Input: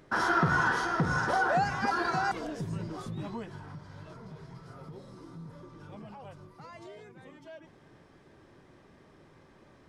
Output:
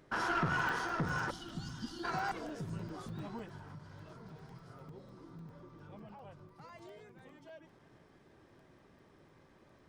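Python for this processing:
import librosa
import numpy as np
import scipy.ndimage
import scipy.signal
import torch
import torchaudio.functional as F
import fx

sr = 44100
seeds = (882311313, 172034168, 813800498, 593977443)

y = fx.diode_clip(x, sr, knee_db=-24.5)
y = fx.spec_box(y, sr, start_s=1.31, length_s=0.73, low_hz=360.0, high_hz=2800.0, gain_db=-27)
y = fx.high_shelf(y, sr, hz=6600.0, db=-11.0, at=(4.83, 6.56))
y = fx.echo_feedback(y, sr, ms=1105, feedback_pct=43, wet_db=-22)
y = fx.buffer_crackle(y, sr, first_s=0.59, period_s=0.1, block=128, kind='zero')
y = y * librosa.db_to_amplitude(-5.0)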